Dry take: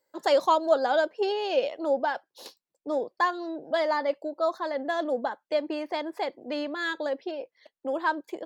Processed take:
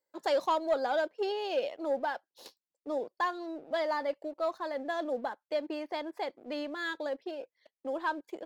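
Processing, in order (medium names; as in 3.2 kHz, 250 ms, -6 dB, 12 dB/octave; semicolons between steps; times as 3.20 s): waveshaping leveller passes 1; trim -9 dB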